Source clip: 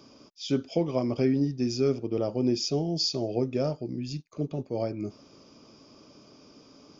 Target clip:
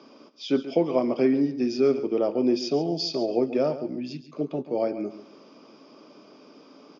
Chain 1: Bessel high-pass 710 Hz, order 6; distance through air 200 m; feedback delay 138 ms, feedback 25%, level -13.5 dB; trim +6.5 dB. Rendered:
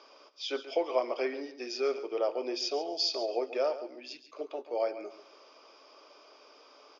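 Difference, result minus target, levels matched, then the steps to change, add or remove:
250 Hz band -10.0 dB
change: Bessel high-pass 280 Hz, order 6

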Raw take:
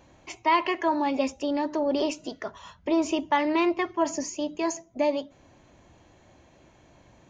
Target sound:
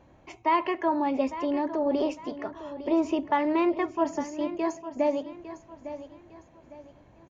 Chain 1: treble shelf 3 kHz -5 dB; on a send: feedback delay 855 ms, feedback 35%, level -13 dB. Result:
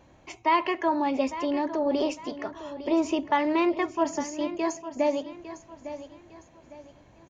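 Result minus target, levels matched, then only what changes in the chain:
8 kHz band +7.5 dB
change: treble shelf 3 kHz -15 dB

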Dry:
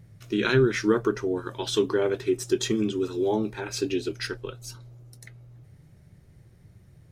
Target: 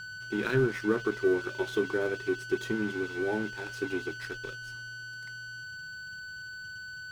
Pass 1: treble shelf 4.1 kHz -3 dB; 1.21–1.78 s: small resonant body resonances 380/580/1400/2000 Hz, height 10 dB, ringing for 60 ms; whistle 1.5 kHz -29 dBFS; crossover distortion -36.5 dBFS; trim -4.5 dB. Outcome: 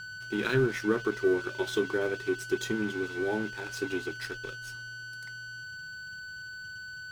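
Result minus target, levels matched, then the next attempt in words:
8 kHz band +4.0 dB
treble shelf 4.1 kHz -15 dB; 1.21–1.78 s: small resonant body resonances 380/580/1400/2000 Hz, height 10 dB, ringing for 60 ms; whistle 1.5 kHz -29 dBFS; crossover distortion -36.5 dBFS; trim -4.5 dB

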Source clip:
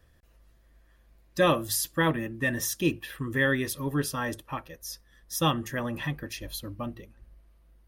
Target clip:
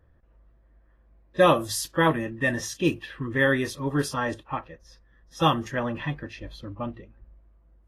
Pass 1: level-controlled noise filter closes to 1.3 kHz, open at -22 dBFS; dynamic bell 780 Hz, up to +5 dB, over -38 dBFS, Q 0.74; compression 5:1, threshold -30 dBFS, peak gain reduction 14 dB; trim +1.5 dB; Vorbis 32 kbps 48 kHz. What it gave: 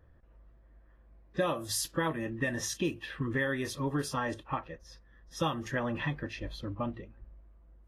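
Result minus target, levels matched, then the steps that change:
compression: peak gain reduction +14 dB
remove: compression 5:1, threshold -30 dBFS, peak gain reduction 14 dB

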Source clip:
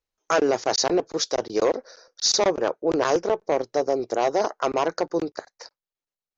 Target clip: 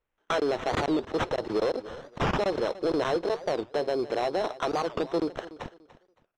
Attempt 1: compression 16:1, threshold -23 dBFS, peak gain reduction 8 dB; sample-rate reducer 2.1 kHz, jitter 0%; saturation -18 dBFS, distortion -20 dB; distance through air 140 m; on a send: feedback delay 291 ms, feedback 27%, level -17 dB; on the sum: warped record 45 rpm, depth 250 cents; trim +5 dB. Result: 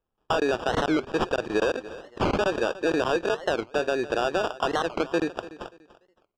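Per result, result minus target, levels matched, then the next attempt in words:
saturation: distortion -8 dB; sample-rate reducer: distortion +5 dB
compression 16:1, threshold -23 dBFS, peak gain reduction 8 dB; sample-rate reducer 2.1 kHz, jitter 0%; saturation -25 dBFS, distortion -12 dB; distance through air 140 m; on a send: feedback delay 291 ms, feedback 27%, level -17 dB; on the sum: warped record 45 rpm, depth 250 cents; trim +5 dB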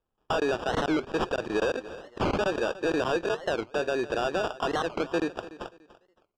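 sample-rate reducer: distortion +5 dB
compression 16:1, threshold -23 dBFS, peak gain reduction 8 dB; sample-rate reducer 4.7 kHz, jitter 0%; saturation -25 dBFS, distortion -12 dB; distance through air 140 m; on a send: feedback delay 291 ms, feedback 27%, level -17 dB; on the sum: warped record 45 rpm, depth 250 cents; trim +5 dB

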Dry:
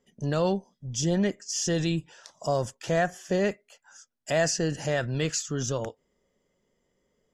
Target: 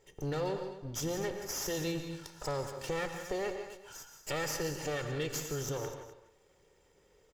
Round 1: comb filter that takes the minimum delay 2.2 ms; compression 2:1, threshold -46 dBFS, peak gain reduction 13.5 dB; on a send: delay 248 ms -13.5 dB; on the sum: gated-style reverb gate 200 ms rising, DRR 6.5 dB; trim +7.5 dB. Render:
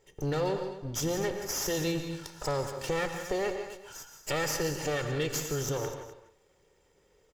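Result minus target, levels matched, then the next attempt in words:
compression: peak gain reduction -4.5 dB
comb filter that takes the minimum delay 2.2 ms; compression 2:1, threshold -55 dBFS, peak gain reduction 18 dB; on a send: delay 248 ms -13.5 dB; on the sum: gated-style reverb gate 200 ms rising, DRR 6.5 dB; trim +7.5 dB

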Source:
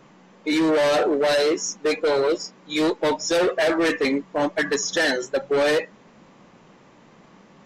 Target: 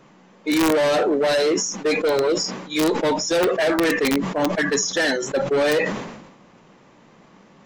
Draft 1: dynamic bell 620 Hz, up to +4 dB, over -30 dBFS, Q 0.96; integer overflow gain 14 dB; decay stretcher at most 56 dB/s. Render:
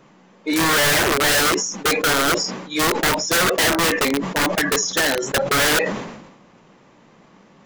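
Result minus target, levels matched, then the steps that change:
500 Hz band -5.5 dB
change: dynamic bell 180 Hz, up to +4 dB, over -30 dBFS, Q 0.96

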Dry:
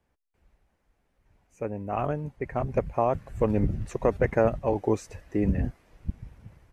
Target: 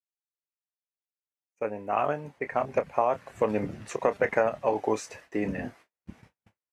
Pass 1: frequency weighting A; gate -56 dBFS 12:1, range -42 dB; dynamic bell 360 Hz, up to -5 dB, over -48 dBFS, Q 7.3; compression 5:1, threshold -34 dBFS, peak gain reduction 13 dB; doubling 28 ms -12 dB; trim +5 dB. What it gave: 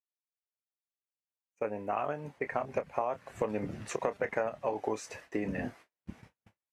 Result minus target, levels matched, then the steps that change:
compression: peak gain reduction +8 dB
change: compression 5:1, threshold -24 dBFS, peak gain reduction 5 dB

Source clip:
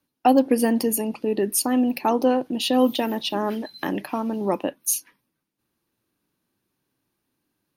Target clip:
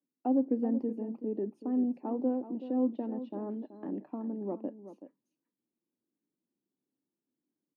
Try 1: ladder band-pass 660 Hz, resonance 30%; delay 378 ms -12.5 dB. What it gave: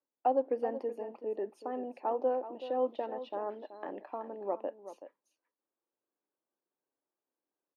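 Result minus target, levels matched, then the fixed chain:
250 Hz band -11.0 dB
ladder band-pass 310 Hz, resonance 30%; delay 378 ms -12.5 dB

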